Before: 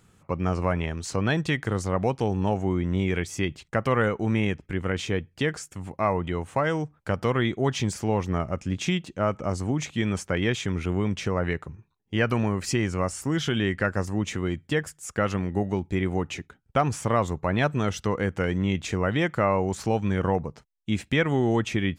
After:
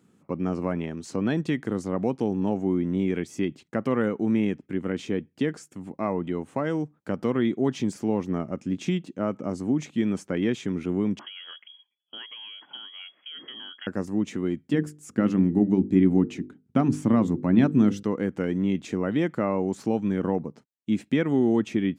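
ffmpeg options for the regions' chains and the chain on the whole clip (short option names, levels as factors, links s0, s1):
-filter_complex "[0:a]asettb=1/sr,asplit=3[s0][s1][s2];[s0]atrim=end=11.194[s3];[s1]atrim=start=11.19:end=13.87,asetpts=PTS-STARTPTS,afade=t=in:d=0.004:c=qsin,afade=t=out:st=2.676:d=0.004:c=qsin,acrossover=split=190|2500[s4][s5][s6];[s4]acompressor=threshold=0.0126:ratio=4[s7];[s5]acompressor=threshold=0.0178:ratio=4[s8];[s6]acompressor=threshold=0.00316:ratio=4[s9];[s7][s8][s9]amix=inputs=3:normalize=0,lowpass=f=2900:t=q:w=0.5098,lowpass=f=2900:t=q:w=0.6013,lowpass=f=2900:t=q:w=0.9,lowpass=f=2900:t=q:w=2.563,afreqshift=-3400[s10];[s2]atrim=start=13.866[s11];[s3][s10]acrossfade=d=0.004:c1=hsin:c2=qsin[s12];[s12][s11]acrossfade=d=0.004:c1=qsin:c2=hsin,asettb=1/sr,asplit=3[s13][s14][s15];[s13]atrim=end=14.734[s16];[s14]atrim=start=14.73:end=18.03,asetpts=PTS-STARTPTS,afade=t=in:d=0.004:c=qsin,afade=t=out:st=3.296:d=0.004:c=qsin,lowshelf=f=370:t=q:w=1.5:g=6.5,bandreject=f=50:t=h:w=6,bandreject=f=100:t=h:w=6,bandreject=f=150:t=h:w=6,bandreject=f=200:t=h:w=6,bandreject=f=250:t=h:w=6,bandreject=f=300:t=h:w=6,bandreject=f=350:t=h:w=6,bandreject=f=400:t=h:w=6,bandreject=f=450:t=h:w=6,bandreject=f=500:t=h:w=6[s17];[s15]atrim=start=18.026[s18];[s16][s17]acrossfade=d=0.004:c1=hsin:c2=qsin[s19];[s19][s18]acrossfade=d=0.004:c1=qsin:c2=hsin,highpass=140,equalizer=f=260:t=o:w=1.6:g=13.5,volume=0.398"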